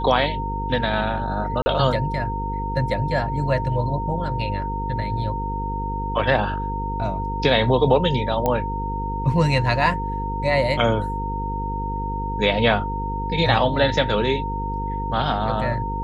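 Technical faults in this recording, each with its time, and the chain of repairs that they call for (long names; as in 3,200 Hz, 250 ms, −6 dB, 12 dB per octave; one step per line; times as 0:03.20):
mains buzz 50 Hz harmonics 10 −28 dBFS
whistle 920 Hz −27 dBFS
0:01.62–0:01.66: drop-out 40 ms
0:08.46: click −9 dBFS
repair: click removal
hum removal 50 Hz, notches 10
notch filter 920 Hz, Q 30
repair the gap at 0:01.62, 40 ms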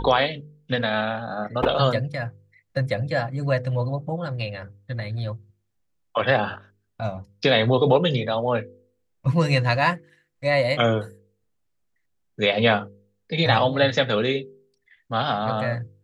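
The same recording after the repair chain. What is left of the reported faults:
none of them is left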